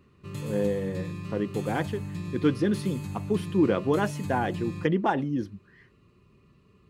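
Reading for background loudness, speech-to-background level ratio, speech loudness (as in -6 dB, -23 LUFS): -36.5 LUFS, 8.0 dB, -28.5 LUFS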